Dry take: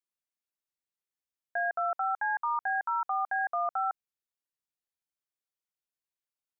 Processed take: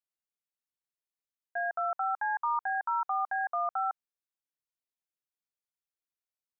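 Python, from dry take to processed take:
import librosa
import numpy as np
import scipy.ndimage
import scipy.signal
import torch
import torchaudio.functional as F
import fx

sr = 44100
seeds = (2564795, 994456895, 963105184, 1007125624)

y = fx.dynamic_eq(x, sr, hz=1000.0, q=0.98, threshold_db=-43.0, ratio=4.0, max_db=7)
y = y * 10.0 ** (-6.0 / 20.0)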